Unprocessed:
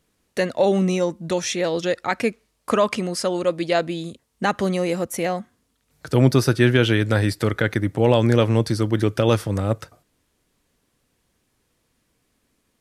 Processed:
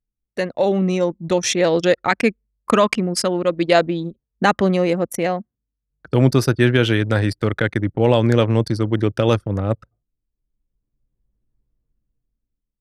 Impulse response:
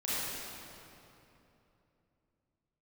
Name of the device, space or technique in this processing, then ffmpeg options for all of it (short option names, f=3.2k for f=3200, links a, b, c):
voice memo with heavy noise removal: -filter_complex "[0:a]asettb=1/sr,asplit=3[a][b][c];[a]atrim=end=2.084[d];[b]atrim=start=2.08:end=3.53,asetpts=PTS-STARTPTS,afade=t=in:d=0.004:c=qsin,afade=t=out:st=1.446:d=0.004:c=qsin,equalizer=f=590:w=0.8:g=-4.5[e];[c]atrim=start=3.526[f];[d][e]acrossfade=d=0.004:c1=hsin:c2=qsin[g];[g][f]acrossfade=d=0.004:c1=qsin:c2=hsin,anlmdn=100,dynaudnorm=f=260:g=9:m=15dB,volume=-1dB"